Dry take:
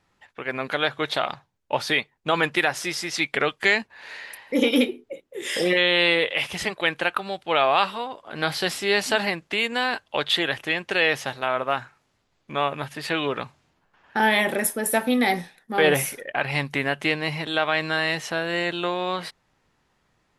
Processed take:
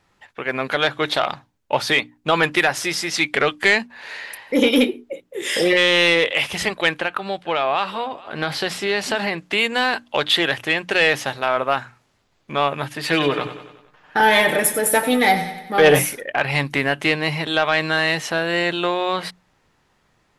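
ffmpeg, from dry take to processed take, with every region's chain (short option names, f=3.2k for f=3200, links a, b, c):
-filter_complex "[0:a]asettb=1/sr,asplit=3[a][b][c];[a]atrim=end=6.984[d];[b]atrim=start=6.98:end=9.38,asetpts=PTS-STARTPTS,afade=t=in:d=0.004:c=qsin,afade=t=out:st=2.396:d=0.004:c=qsin,highshelf=f=6.4k:g=-8.5,acompressor=threshold=-24dB:ratio=2:attack=3.2:release=140:knee=1:detection=peak,aecho=1:1:440:0.075,atrim=end_sample=105840[e];[c]atrim=start=9.376[f];[d][e]acrossfade=d=0.004:c1=hsin:c2=qsin[g];[g][f]acrossfade=d=0.004:c1=qsin:c2=hsin,asettb=1/sr,asplit=3[h][i][j];[h]atrim=end=13.024[k];[i]atrim=start=13.02:end=15.99,asetpts=PTS-STARTPTS,afade=t=in:d=0.004:c=qsin,afade=t=out:st=2.966:d=0.004:c=qsin,aecho=1:1:6.6:0.52,atrim=end_sample=130977,aecho=1:1:94|188|282|376|470|564:0.251|0.136|0.0732|0.0396|0.0214|0.0115,atrim=end_sample=130977[l];[j]atrim=start=15.986[m];[k][l]acrossfade=d=0.004:c1=hsin:c2=qsin[n];[n][m]acrossfade=d=0.004:c1=qsin:c2=hsin,bandreject=f=60:t=h:w=6,bandreject=f=120:t=h:w=6,bandreject=f=180:t=h:w=6,bandreject=f=240:t=h:w=6,bandreject=f=300:t=h:w=6,acontrast=88,volume=-2dB"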